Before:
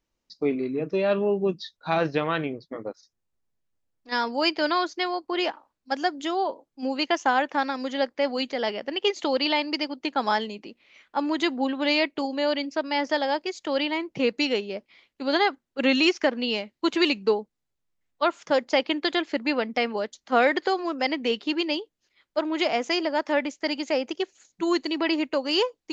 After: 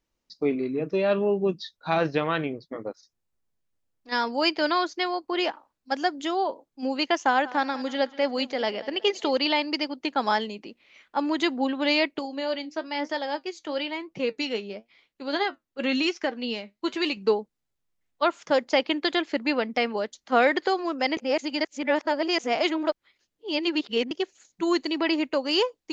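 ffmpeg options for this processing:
-filter_complex "[0:a]asettb=1/sr,asplit=3[a][b][c];[a]atrim=end=7.234[d];[b]atrim=start=7.23:end=9.38,asetpts=PTS-STARTPTS,afade=t=in:d=0.004:c=qsin,afade=t=out:st=2.146:d=0.004:c=qsin,aecho=1:1:189|378|567:0.126|0.0504|0.0201,atrim=end_sample=94815[e];[c]atrim=start=9.376[f];[d][e]acrossfade=d=0.004:c1=hsin:c2=qsin[g];[g][f]acrossfade=d=0.004:c1=qsin:c2=hsin,asettb=1/sr,asplit=3[h][i][j];[h]atrim=end=12.194[k];[i]atrim=start=12.19:end=17.17,asetpts=PTS-STARTPTS,afade=t=in:d=0.004:c=qsin,afade=t=out:st=4.976:d=0.004:c=qsin,flanger=delay=5.3:depth=4.9:regen=65:speed=1:shape=triangular[l];[j]atrim=start=17.166[m];[k][l]acrossfade=d=0.004:c1=hsin:c2=qsin[n];[n][m]acrossfade=d=0.004:c1=qsin:c2=hsin,asplit=3[o][p][q];[o]atrim=end=21.172[r];[p]atrim=start=21.168:end=24.112,asetpts=PTS-STARTPTS,areverse[s];[q]atrim=start=24.108[t];[r][s]acrossfade=d=0.004:c1=hsin:c2=hsin[u];[u][t]acrossfade=d=0.004:c1=hsin:c2=hsin"

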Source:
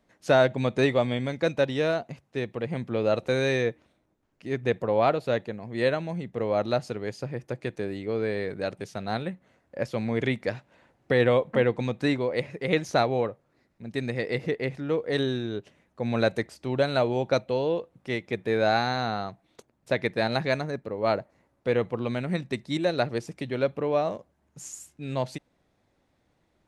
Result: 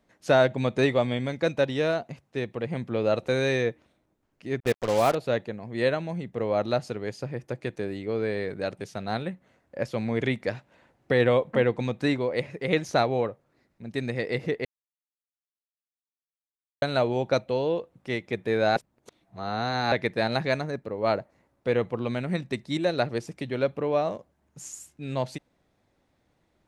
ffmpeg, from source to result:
-filter_complex "[0:a]asettb=1/sr,asplit=3[a][b][c];[a]atrim=end=4.604[d];[b]atrim=start=4.6:end=5.15,asetpts=PTS-STARTPTS,afade=t=in:d=0.004:c=qsin,afade=t=out:st=0.546:d=0.004:c=qsin,acrusher=bits=4:mix=0:aa=0.5[e];[c]atrim=start=5.146[f];[d][e]acrossfade=d=0.004:c1=hsin:c2=qsin[g];[g][f]acrossfade=d=0.004:c1=qsin:c2=hsin,asplit=5[h][i][j][k][l];[h]atrim=end=14.65,asetpts=PTS-STARTPTS,afade=t=out:st=14.646:d=0.004:c=hsin[m];[i]atrim=start=14.65:end=16.82,asetpts=PTS-STARTPTS,volume=0[n];[j]atrim=start=16.82:end=18.762,asetpts=PTS-STARTPTS,afade=t=in:d=0.004:c=hsin[o];[k]atrim=start=18.758:end=19.922,asetpts=PTS-STARTPTS,areverse[p];[l]atrim=start=19.918[q];[m][n][o]concat=n=3:v=0:a=1[r];[r][p]acrossfade=d=0.004:c1=hsin:c2=hsin[s];[s][q]acrossfade=d=0.004:c1=hsin:c2=hsin"

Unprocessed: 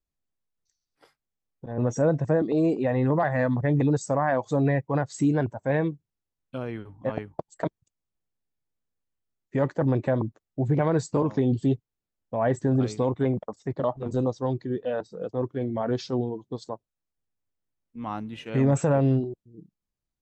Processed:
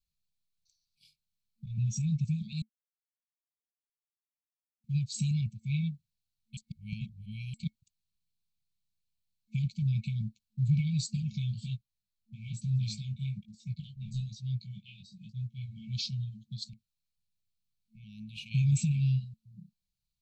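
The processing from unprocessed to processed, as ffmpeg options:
-filter_complex "[0:a]asplit=3[a][b][c];[a]afade=t=out:st=11.51:d=0.02[d];[b]flanger=delay=16.5:depth=6.1:speed=1.1,afade=t=in:st=11.51:d=0.02,afade=t=out:st=15.93:d=0.02[e];[c]afade=t=in:st=15.93:d=0.02[f];[d][e][f]amix=inputs=3:normalize=0,asettb=1/sr,asplit=3[g][h][i];[g]atrim=end=16.734[j];[h]atrim=start=16.73:end=18.51,asetpts=PTS-STARTPTS,afade=t=in:d=0.004:c=qsin,afade=t=out:st=1.776:d=0.004:c=qsin,acompressor=threshold=-37dB:ratio=6:attack=3.2:release=140:knee=1:detection=peak[k];[i]atrim=start=18.506[l];[j][k]acrossfade=d=0.004:c1=hsin:c2=qsin[m];[m][l]acrossfade=d=0.004:c1=qsin:c2=hsin,asplit=5[n][o][p][q][r];[n]atrim=end=2.62,asetpts=PTS-STARTPTS,afade=t=out:st=2.616:d=0.004:c=hsin[s];[o]atrim=start=2.62:end=4.84,asetpts=PTS-STARTPTS,volume=0[t];[p]atrim=start=4.84:end=6.572,asetpts=PTS-STARTPTS,afade=t=in:d=0.004:c=hsin[u];[q]atrim=start=6.568:end=7.542,asetpts=PTS-STARTPTS,areverse[v];[r]atrim=start=7.538[w];[s][t][u]concat=n=3:v=0:a=1[x];[x][v]acrossfade=d=0.004:c1=hsin:c2=hsin[y];[y][w]acrossfade=d=0.004:c1=hsin:c2=hsin,equalizer=f=4.2k:t=o:w=0.35:g=9.5,afftfilt=real='re*(1-between(b*sr/4096,220,2200))':imag='im*(1-between(b*sr/4096,220,2200))':win_size=4096:overlap=0.75,adynamicequalizer=threshold=0.0126:dfrequency=110:dqfactor=0.7:tfrequency=110:tqfactor=0.7:attack=5:release=100:ratio=0.375:range=2:mode=cutabove:tftype=bell"

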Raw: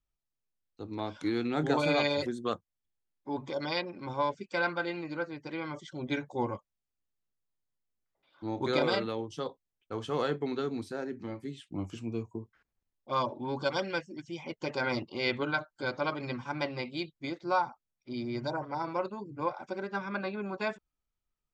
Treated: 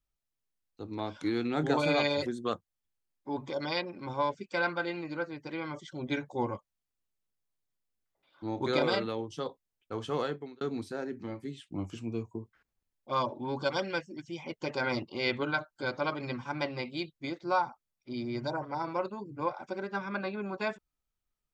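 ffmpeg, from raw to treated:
-filter_complex "[0:a]asplit=2[a][b];[a]atrim=end=10.61,asetpts=PTS-STARTPTS,afade=t=out:st=10.14:d=0.47[c];[b]atrim=start=10.61,asetpts=PTS-STARTPTS,afade=t=in:d=0.004:c=hsin[d];[c][d]concat=n=2:v=0:a=1"

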